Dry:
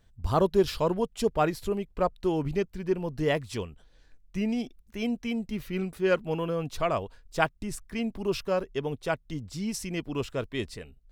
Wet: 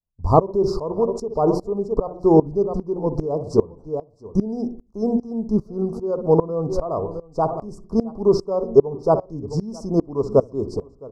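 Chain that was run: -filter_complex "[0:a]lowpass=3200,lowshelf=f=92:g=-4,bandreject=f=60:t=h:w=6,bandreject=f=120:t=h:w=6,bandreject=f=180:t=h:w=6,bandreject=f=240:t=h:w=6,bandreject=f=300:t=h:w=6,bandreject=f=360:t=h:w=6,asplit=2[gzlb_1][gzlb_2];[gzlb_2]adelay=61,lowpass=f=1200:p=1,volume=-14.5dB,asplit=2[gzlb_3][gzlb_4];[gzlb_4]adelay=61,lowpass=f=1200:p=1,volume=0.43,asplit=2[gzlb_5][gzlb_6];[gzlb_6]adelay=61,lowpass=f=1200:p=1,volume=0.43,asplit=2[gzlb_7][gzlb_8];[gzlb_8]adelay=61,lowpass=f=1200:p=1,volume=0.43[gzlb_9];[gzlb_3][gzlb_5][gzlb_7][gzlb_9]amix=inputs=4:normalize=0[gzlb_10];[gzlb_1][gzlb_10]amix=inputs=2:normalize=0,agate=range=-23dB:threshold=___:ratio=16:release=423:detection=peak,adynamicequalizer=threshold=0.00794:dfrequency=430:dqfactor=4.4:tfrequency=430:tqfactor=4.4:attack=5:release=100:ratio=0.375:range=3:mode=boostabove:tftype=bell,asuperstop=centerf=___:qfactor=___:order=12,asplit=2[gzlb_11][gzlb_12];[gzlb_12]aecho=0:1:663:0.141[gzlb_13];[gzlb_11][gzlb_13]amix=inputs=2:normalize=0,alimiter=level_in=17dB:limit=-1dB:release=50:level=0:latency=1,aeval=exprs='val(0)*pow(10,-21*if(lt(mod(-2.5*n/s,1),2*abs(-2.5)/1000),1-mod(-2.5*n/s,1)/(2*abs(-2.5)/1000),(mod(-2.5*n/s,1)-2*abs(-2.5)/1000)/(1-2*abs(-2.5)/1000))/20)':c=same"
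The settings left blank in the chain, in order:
-49dB, 2400, 0.63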